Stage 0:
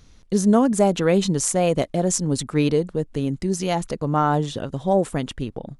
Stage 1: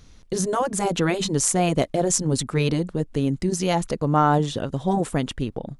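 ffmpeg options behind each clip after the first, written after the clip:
ffmpeg -i in.wav -af "afftfilt=real='re*lt(hypot(re,im),0.891)':imag='im*lt(hypot(re,im),0.891)':win_size=1024:overlap=0.75,volume=1.5dB" out.wav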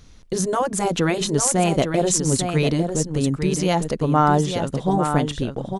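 ffmpeg -i in.wav -af "aecho=1:1:850:0.447,volume=1.5dB" out.wav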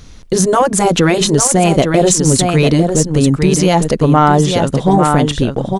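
ffmpeg -i in.wav -af "alimiter=limit=-10dB:level=0:latency=1:release=51,acontrast=64,volume=4dB" out.wav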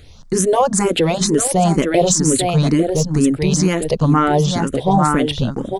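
ffmpeg -i in.wav -filter_complex "[0:a]asplit=2[link_01][link_02];[link_02]afreqshift=2.1[link_03];[link_01][link_03]amix=inputs=2:normalize=1,volume=-1dB" out.wav

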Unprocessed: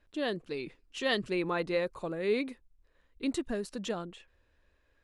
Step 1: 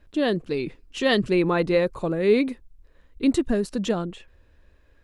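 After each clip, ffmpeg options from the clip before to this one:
ffmpeg -i in.wav -af "lowshelf=frequency=400:gain=8,volume=6.5dB" out.wav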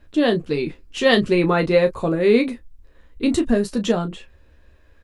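ffmpeg -i in.wav -af "aecho=1:1:13|34:0.473|0.282,volume=3.5dB" out.wav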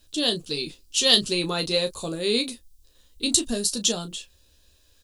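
ffmpeg -i in.wav -af "aexciter=amount=12.6:drive=4.5:freq=3100,volume=-10dB" out.wav

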